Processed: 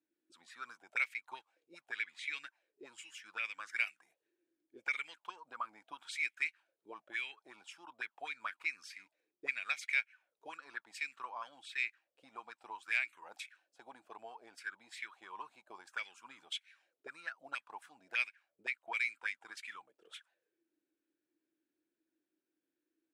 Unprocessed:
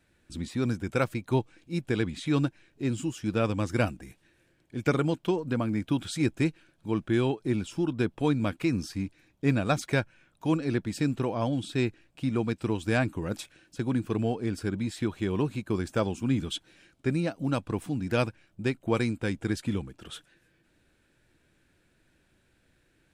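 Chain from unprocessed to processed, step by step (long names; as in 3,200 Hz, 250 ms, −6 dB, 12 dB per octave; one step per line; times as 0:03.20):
first difference
envelope filter 300–2,200 Hz, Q 7.5, up, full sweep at −43 dBFS
level +17.5 dB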